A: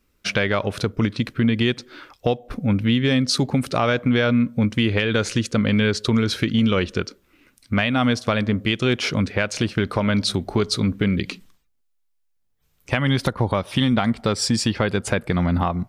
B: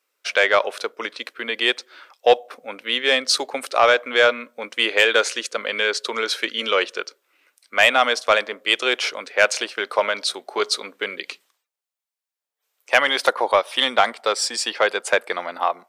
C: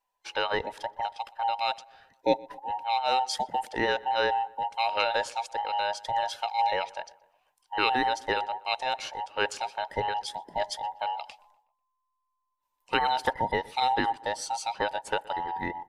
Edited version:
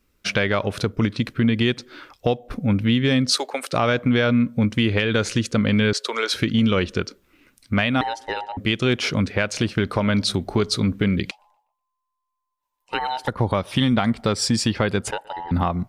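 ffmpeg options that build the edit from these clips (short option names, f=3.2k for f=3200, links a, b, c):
-filter_complex "[1:a]asplit=2[a][b];[2:a]asplit=3[c][d][e];[0:a]asplit=6[f][g][h][i][j][k];[f]atrim=end=3.322[l];[a]atrim=start=3.318:end=3.732[m];[g]atrim=start=3.728:end=5.932[n];[b]atrim=start=5.928:end=6.342[o];[h]atrim=start=6.338:end=8.012[p];[c]atrim=start=8.008:end=8.572[q];[i]atrim=start=8.568:end=11.312[r];[d]atrim=start=11.308:end=13.282[s];[j]atrim=start=13.278:end=15.112[t];[e]atrim=start=15.108:end=15.512[u];[k]atrim=start=15.508[v];[l][m]acrossfade=d=0.004:c1=hsin:c2=hsin[w];[w][n]acrossfade=d=0.004:c1=hsin:c2=hsin[x];[x][o]acrossfade=d=0.004:c1=hsin:c2=hsin[y];[y][p]acrossfade=d=0.004:c1=hsin:c2=hsin[z];[z][q]acrossfade=d=0.004:c1=hsin:c2=hsin[aa];[aa][r]acrossfade=d=0.004:c1=hsin:c2=hsin[ab];[ab][s]acrossfade=d=0.004:c1=hsin:c2=hsin[ac];[ac][t]acrossfade=d=0.004:c1=hsin:c2=hsin[ad];[ad][u]acrossfade=d=0.004:c1=hsin:c2=hsin[ae];[ae][v]acrossfade=d=0.004:c1=hsin:c2=hsin"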